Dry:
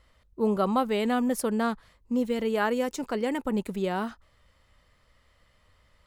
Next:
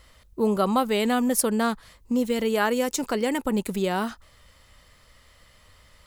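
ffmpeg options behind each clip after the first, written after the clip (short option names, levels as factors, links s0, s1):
-filter_complex "[0:a]asplit=2[s0][s1];[s1]acompressor=threshold=0.0178:ratio=6,volume=1.26[s2];[s0][s2]amix=inputs=2:normalize=0,highshelf=f=4000:g=9.5"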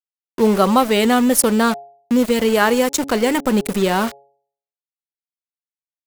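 -af "aeval=exprs='val(0)*gte(abs(val(0)),0.0266)':c=same,bandreject=f=139.4:t=h:w=4,bandreject=f=278.8:t=h:w=4,bandreject=f=418.2:t=h:w=4,bandreject=f=557.6:t=h:w=4,bandreject=f=697:t=h:w=4,bandreject=f=836.4:t=h:w=4,volume=2.51"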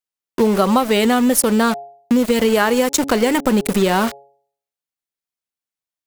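-af "acompressor=threshold=0.158:ratio=6,volume=1.68"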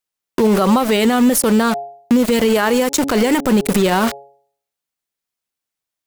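-af "alimiter=level_in=3.55:limit=0.891:release=50:level=0:latency=1,volume=0.562"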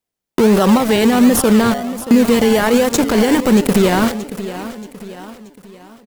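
-filter_complex "[0:a]aecho=1:1:629|1258|1887|2516:0.211|0.0951|0.0428|0.0193,asplit=2[s0][s1];[s1]acrusher=samples=27:mix=1:aa=0.000001:lfo=1:lforange=16.2:lforate=1.3,volume=0.562[s2];[s0][s2]amix=inputs=2:normalize=0,volume=0.891"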